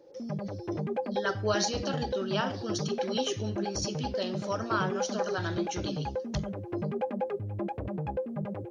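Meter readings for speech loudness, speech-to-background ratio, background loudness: −34.0 LKFS, 0.5 dB, −34.5 LKFS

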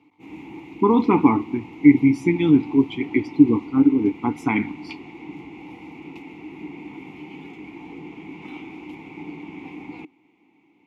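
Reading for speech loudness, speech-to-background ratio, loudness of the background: −19.0 LKFS, 19.5 dB, −38.5 LKFS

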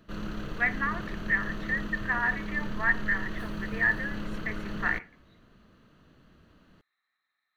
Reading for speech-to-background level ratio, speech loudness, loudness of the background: 7.5 dB, −30.0 LKFS, −37.5 LKFS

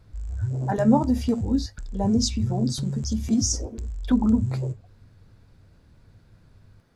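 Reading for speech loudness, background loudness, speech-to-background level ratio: −24.5 LKFS, −31.0 LKFS, 6.5 dB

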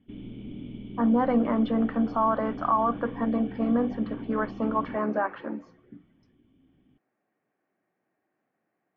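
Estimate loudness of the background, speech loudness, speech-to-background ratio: −40.5 LKFS, −26.5 LKFS, 14.0 dB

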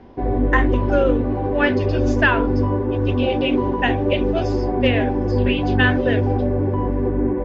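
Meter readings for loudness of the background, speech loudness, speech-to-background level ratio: −20.5 LKFS, −23.5 LKFS, −3.0 dB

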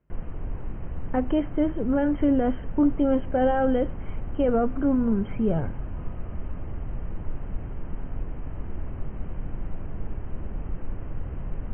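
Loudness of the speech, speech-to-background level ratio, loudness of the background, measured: −25.0 LKFS, 12.5 dB, −37.5 LKFS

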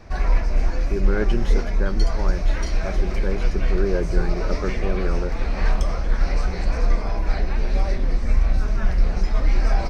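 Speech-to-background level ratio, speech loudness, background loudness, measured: −5.0 dB, −30.0 LKFS, −25.0 LKFS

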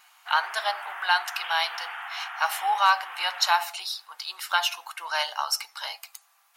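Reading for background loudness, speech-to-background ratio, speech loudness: −36.5 LKFS, 10.0 dB, −26.5 LKFS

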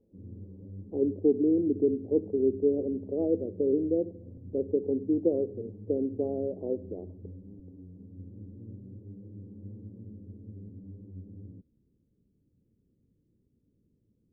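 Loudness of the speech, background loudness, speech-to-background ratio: −29.0 LKFS, −47.0 LKFS, 18.0 dB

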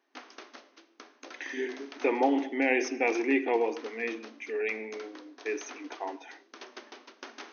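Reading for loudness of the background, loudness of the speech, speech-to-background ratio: −49.5 LKFS, −30.5 LKFS, 19.0 dB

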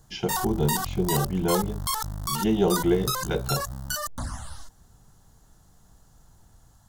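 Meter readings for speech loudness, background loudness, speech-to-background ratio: −27.0 LKFS, −30.0 LKFS, 3.0 dB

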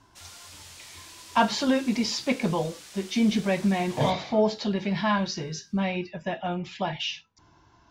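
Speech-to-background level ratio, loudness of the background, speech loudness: 17.5 dB, −44.5 LKFS, −27.0 LKFS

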